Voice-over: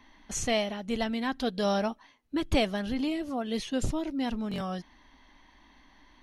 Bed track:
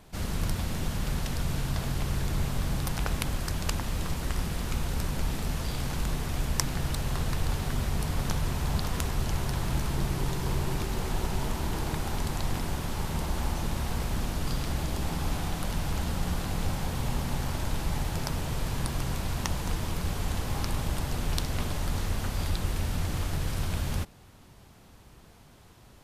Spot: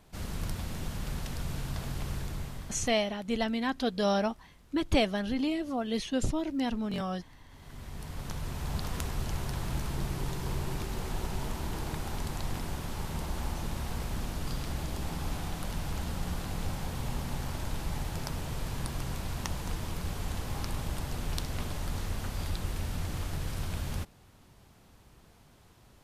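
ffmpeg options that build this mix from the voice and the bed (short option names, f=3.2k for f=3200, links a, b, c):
-filter_complex "[0:a]adelay=2400,volume=0dB[a];[1:a]volume=17.5dB,afade=t=out:st=2.11:d=0.87:silence=0.0794328,afade=t=in:st=7.49:d=1.39:silence=0.0707946[b];[a][b]amix=inputs=2:normalize=0"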